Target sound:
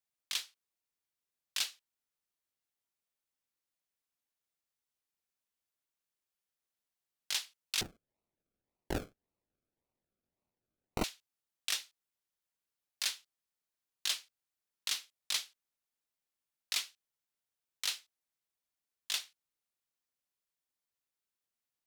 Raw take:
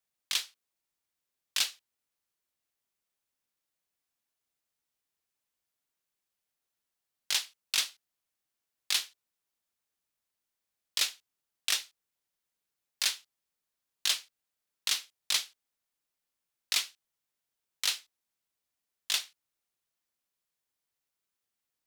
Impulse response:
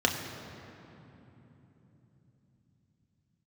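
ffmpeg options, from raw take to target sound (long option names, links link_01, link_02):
-filter_complex "[0:a]asettb=1/sr,asplit=3[link_01][link_02][link_03];[link_01]atrim=end=7.814[link_04];[link_02]atrim=start=7.81:end=11.04,asetpts=PTS-STARTPTS,afade=type=in:duration=0.004:curve=qsin,afade=type=out:start_time=3.226:duration=0.004:curve=qsin,acrusher=samples=37:mix=1:aa=0.000001:lfo=1:lforange=22.2:lforate=1.8[link_05];[link_03]atrim=start=11.036[link_06];[link_04][link_05]acrossfade=duration=0.004:curve1=hsin:curve2=qsin[link_07];[link_07][link_06]acrossfade=duration=0.004:curve1=qsin:curve2=hsin,volume=-5.5dB"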